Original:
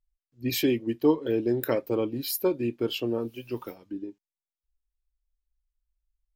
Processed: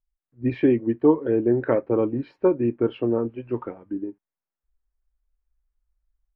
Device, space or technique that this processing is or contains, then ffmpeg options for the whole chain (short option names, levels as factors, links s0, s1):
action camera in a waterproof case: -af "lowpass=f=1800:w=0.5412,lowpass=f=1800:w=1.3066,dynaudnorm=f=150:g=3:m=2.82,volume=0.708" -ar 44100 -c:a aac -b:a 96k